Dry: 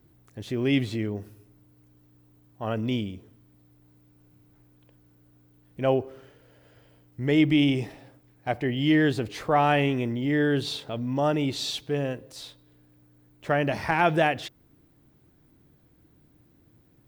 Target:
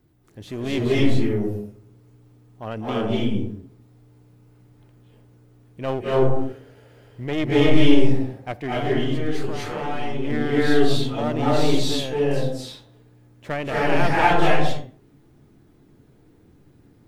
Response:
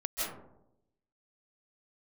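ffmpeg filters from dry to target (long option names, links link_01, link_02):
-filter_complex "[0:a]aeval=exprs='clip(val(0),-1,0.0316)':channel_layout=same,asettb=1/sr,asplit=3[link_01][link_02][link_03];[link_01]atrim=end=8.794[link_04];[link_02]atrim=start=8.79:end=10.25,asetpts=PTS-STARTPTS,afade=type=in:duration=0.004:curve=qsin,afade=type=out:start_time=1.456:duration=0.004:curve=qsin,acompressor=threshold=-30dB:ratio=12[link_05];[link_03]atrim=start=10.246[link_06];[link_04][link_05]acrossfade=duration=0.004:curve1=hsin:curve2=qsin[link_07];[link_07][link_06]acrossfade=duration=0.004:curve1=qsin:curve2=hsin[link_08];[1:a]atrim=start_sample=2205,afade=type=out:start_time=0.4:duration=0.01,atrim=end_sample=18081,asetrate=29106,aresample=44100[link_09];[link_08][link_09]afir=irnorm=-1:irlink=0,volume=-2dB"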